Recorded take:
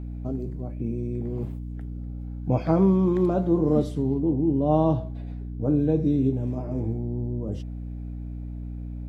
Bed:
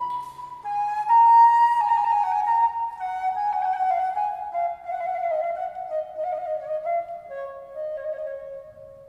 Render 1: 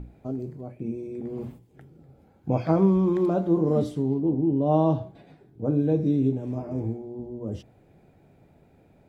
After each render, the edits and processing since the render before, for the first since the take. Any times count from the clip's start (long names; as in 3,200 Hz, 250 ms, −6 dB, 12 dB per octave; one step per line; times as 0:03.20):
mains-hum notches 60/120/180/240/300 Hz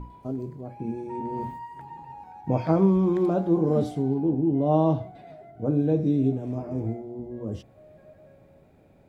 mix in bed −22 dB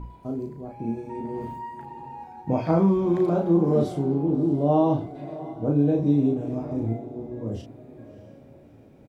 double-tracking delay 35 ms −4 dB
feedback delay with all-pass diffusion 637 ms, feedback 45%, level −16 dB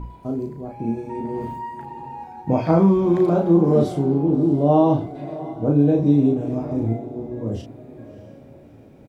level +4.5 dB